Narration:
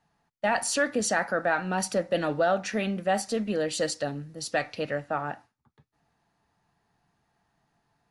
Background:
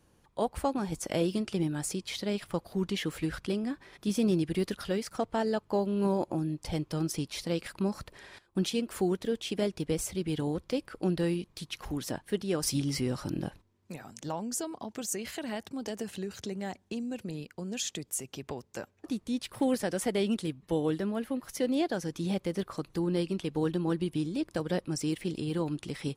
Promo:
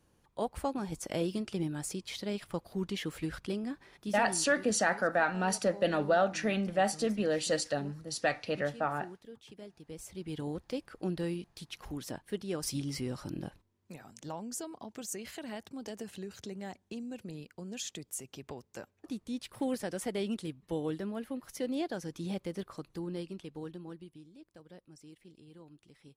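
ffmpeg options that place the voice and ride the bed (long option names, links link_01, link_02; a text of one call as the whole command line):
ffmpeg -i stem1.wav -i stem2.wav -filter_complex "[0:a]adelay=3700,volume=-2.5dB[link_01];[1:a]volume=9.5dB,afade=type=out:start_time=3.84:duration=0.59:silence=0.177828,afade=type=in:start_time=9.84:duration=0.64:silence=0.211349,afade=type=out:start_time=22.42:duration=1.81:silence=0.141254[link_02];[link_01][link_02]amix=inputs=2:normalize=0" out.wav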